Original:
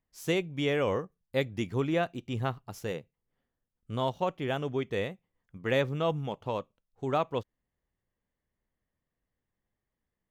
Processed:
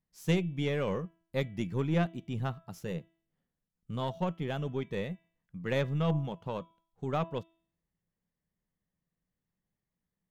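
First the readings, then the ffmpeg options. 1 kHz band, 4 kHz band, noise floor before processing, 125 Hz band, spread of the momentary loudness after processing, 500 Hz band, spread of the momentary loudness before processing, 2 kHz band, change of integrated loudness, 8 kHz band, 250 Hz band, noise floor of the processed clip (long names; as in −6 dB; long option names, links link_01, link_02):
−4.5 dB, −4.5 dB, below −85 dBFS, +2.5 dB, 11 LU, −4.5 dB, 9 LU, −4.5 dB, −2.0 dB, can't be measured, 0.0 dB, below −85 dBFS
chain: -af "equalizer=frequency=170:width=2.6:gain=13,bandreject=frequency=329.7:width_type=h:width=4,bandreject=frequency=659.4:width_type=h:width=4,bandreject=frequency=989.1:width_type=h:width=4,bandreject=frequency=1318.8:width_type=h:width=4,bandreject=frequency=1648.5:width_type=h:width=4,bandreject=frequency=1978.2:width_type=h:width=4,bandreject=frequency=2307.9:width_type=h:width=4,bandreject=frequency=2637.6:width_type=h:width=4,bandreject=frequency=2967.3:width_type=h:width=4,bandreject=frequency=3297:width_type=h:width=4,bandreject=frequency=3626.7:width_type=h:width=4,aeval=exprs='0.299*(cos(1*acos(clip(val(0)/0.299,-1,1)))-cos(1*PI/2))+0.015*(cos(3*acos(clip(val(0)/0.299,-1,1)))-cos(3*PI/2))+0.0133*(cos(6*acos(clip(val(0)/0.299,-1,1)))-cos(6*PI/2))':channel_layout=same,volume=-3.5dB"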